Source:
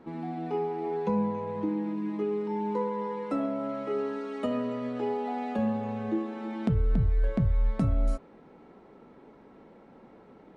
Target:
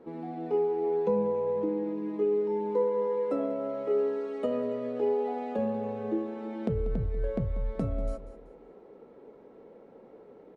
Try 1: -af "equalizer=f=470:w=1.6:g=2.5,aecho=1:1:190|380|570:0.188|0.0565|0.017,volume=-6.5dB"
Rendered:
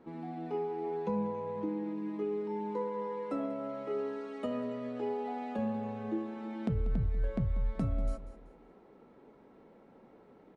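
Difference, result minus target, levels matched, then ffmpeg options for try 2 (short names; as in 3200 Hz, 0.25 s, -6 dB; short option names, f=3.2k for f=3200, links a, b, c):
500 Hz band -3.0 dB
-af "equalizer=f=470:w=1.6:g=13,aecho=1:1:190|380|570:0.188|0.0565|0.017,volume=-6.5dB"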